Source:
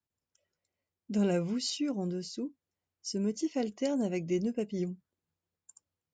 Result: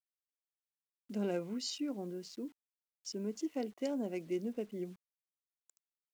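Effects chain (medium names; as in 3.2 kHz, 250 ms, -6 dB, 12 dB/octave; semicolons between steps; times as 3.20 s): local Wiener filter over 9 samples; high-pass 210 Hz 24 dB/octave; bit crusher 10-bit; trim -5 dB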